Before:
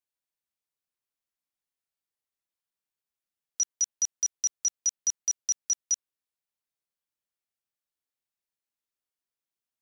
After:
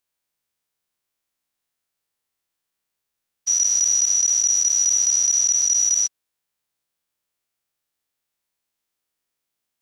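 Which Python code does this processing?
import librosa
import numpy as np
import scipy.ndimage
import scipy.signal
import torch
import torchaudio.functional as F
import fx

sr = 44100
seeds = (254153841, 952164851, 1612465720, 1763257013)

y = fx.spec_dilate(x, sr, span_ms=240)
y = F.gain(torch.from_numpy(y), 4.5).numpy()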